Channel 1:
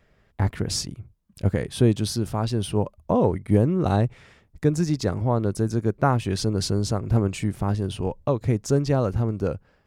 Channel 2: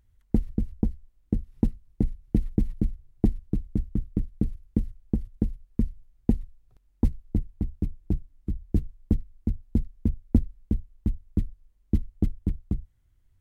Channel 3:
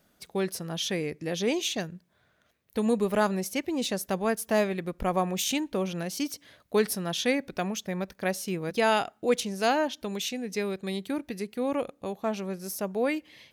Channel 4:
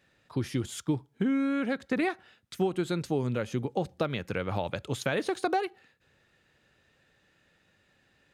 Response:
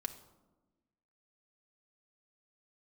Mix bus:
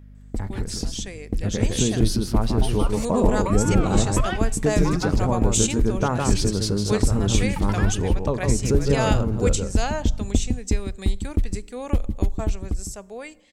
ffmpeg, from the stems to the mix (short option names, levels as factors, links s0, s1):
-filter_complex "[0:a]bandreject=f=700:w=12,volume=0.398,asplit=3[s0][s1][s2];[s1]volume=0.422[s3];[s2]volume=0.501[s4];[1:a]volume=1.33,asplit=2[s5][s6];[s6]volume=0.168[s7];[2:a]lowpass=f=7700:t=q:w=8.9,adelay=150,volume=0.282,asplit=2[s8][s9];[s9]volume=0.376[s10];[3:a]aeval=exprs='val(0)*sin(2*PI*840*n/s+840*0.4/1.4*sin(2*PI*1.4*n/s))':c=same,adelay=2250,volume=0.668,asplit=3[s11][s12][s13];[s11]atrim=end=5.15,asetpts=PTS-STARTPTS,afade=t=out:st=5.146:d=0.004:c=hsin[s14];[s12]atrim=start=5.15:end=7.56,asetpts=PTS-STARTPTS,volume=0[s15];[s13]atrim=start=7.56,asetpts=PTS-STARTPTS,afade=t=in:d=0.004:c=hsin[s16];[s14][s15][s16]concat=n=3:v=0:a=1,asplit=2[s17][s18];[s18]volume=0.1[s19];[s5][s8]amix=inputs=2:normalize=0,equalizer=f=160:w=0.83:g=-14,acompressor=threshold=0.0708:ratio=6,volume=1[s20];[s0][s17]amix=inputs=2:normalize=0,aeval=exprs='val(0)+0.00708*(sin(2*PI*50*n/s)+sin(2*PI*2*50*n/s)/2+sin(2*PI*3*50*n/s)/3+sin(2*PI*4*50*n/s)/4+sin(2*PI*5*50*n/s)/5)':c=same,acompressor=threshold=0.0282:ratio=6,volume=1[s21];[4:a]atrim=start_sample=2205[s22];[s3][s10]amix=inputs=2:normalize=0[s23];[s23][s22]afir=irnorm=-1:irlink=0[s24];[s4][s7][s19]amix=inputs=3:normalize=0,aecho=0:1:157:1[s25];[s20][s21][s24][s25]amix=inputs=4:normalize=0,dynaudnorm=f=380:g=7:m=2.82"